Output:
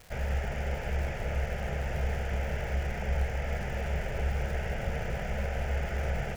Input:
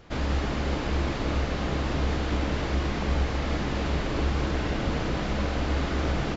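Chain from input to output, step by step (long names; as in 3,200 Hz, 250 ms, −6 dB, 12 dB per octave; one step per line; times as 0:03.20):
phaser with its sweep stopped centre 1,100 Hz, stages 6
surface crackle 490 per second −39 dBFS
level −2.5 dB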